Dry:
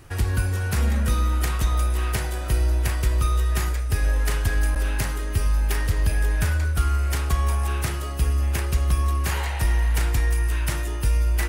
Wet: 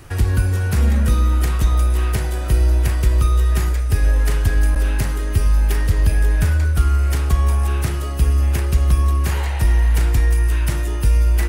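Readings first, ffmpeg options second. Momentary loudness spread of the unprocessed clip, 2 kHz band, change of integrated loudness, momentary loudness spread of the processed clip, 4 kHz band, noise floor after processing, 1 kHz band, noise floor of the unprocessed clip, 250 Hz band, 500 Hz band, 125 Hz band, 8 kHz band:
3 LU, +1.0 dB, +5.5 dB, 4 LU, +1.0 dB, -21 dBFS, +1.5 dB, -27 dBFS, +5.5 dB, +4.0 dB, +6.0 dB, +1.0 dB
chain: -filter_complex "[0:a]acrossover=split=490[s0][s1];[s1]acompressor=threshold=0.00631:ratio=1.5[s2];[s0][s2]amix=inputs=2:normalize=0,volume=2"

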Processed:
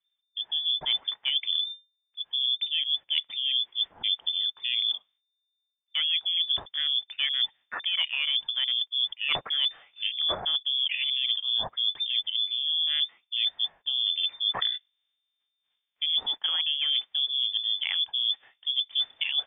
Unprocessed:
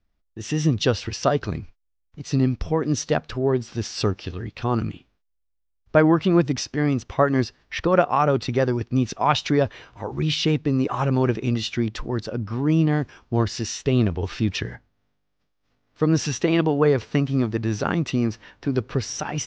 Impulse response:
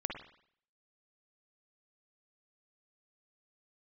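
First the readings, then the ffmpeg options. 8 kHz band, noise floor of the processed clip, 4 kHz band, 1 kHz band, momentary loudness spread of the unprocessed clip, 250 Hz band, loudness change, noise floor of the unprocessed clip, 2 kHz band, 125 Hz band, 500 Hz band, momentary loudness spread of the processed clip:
no reading, -82 dBFS, +12.0 dB, -17.0 dB, 9 LU, under -35 dB, -3.0 dB, -72 dBFS, -4.5 dB, under -35 dB, -26.0 dB, 4 LU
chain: -af "aeval=exprs='0.708*sin(PI/2*1.41*val(0)/0.708)':c=same,afwtdn=0.0562,lowpass=f=3100:t=q:w=0.5098,lowpass=f=3100:t=q:w=0.6013,lowpass=f=3100:t=q:w=0.9,lowpass=f=3100:t=q:w=2.563,afreqshift=-3600,areverse,acompressor=threshold=0.0631:ratio=12,areverse"

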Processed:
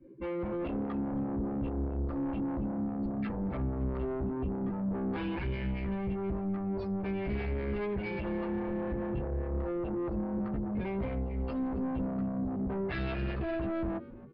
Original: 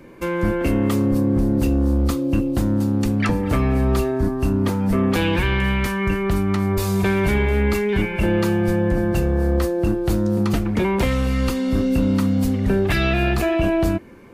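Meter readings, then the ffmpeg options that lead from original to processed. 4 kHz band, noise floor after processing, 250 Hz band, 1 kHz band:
-22.0 dB, -36 dBFS, -13.0 dB, -13.5 dB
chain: -filter_complex "[0:a]alimiter=limit=0.106:level=0:latency=1:release=48,asplit=2[s0][s1];[s1]adelay=15,volume=0.794[s2];[s0][s2]amix=inputs=2:normalize=0,afftdn=nr=26:nf=-31,aresample=16000,asoftclip=type=tanh:threshold=0.0531,aresample=44100,highshelf=f=3900:g=-10,aresample=11025,aresample=44100,acrossover=split=400[s3][s4];[s3]aeval=exprs='val(0)*(1-0.5/2+0.5/2*cos(2*PI*4.9*n/s))':c=same[s5];[s4]aeval=exprs='val(0)*(1-0.5/2-0.5/2*cos(2*PI*4.9*n/s))':c=same[s6];[s5][s6]amix=inputs=2:normalize=0,asplit=2[s7][s8];[s8]asplit=3[s9][s10][s11];[s9]adelay=272,afreqshift=-91,volume=0.133[s12];[s10]adelay=544,afreqshift=-182,volume=0.0412[s13];[s11]adelay=816,afreqshift=-273,volume=0.0129[s14];[s12][s13][s14]amix=inputs=3:normalize=0[s15];[s7][s15]amix=inputs=2:normalize=0,volume=0.75"

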